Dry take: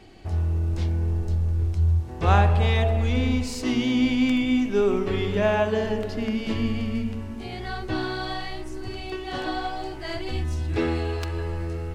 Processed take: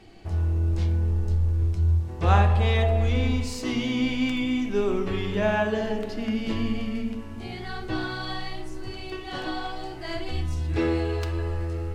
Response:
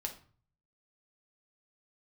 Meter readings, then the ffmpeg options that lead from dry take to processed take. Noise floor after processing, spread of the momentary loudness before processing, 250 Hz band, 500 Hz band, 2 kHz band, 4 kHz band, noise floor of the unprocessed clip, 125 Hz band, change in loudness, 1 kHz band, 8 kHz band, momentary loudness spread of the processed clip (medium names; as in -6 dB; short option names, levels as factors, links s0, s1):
-36 dBFS, 12 LU, -2.5 dB, -2.0 dB, -1.0 dB, -1.0 dB, -35 dBFS, 0.0 dB, -1.0 dB, -1.5 dB, -1.5 dB, 13 LU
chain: -filter_complex "[0:a]asplit=2[s0][s1];[1:a]atrim=start_sample=2205,asetrate=35280,aresample=44100[s2];[s1][s2]afir=irnorm=-1:irlink=0,volume=1.26[s3];[s0][s3]amix=inputs=2:normalize=0,volume=0.376"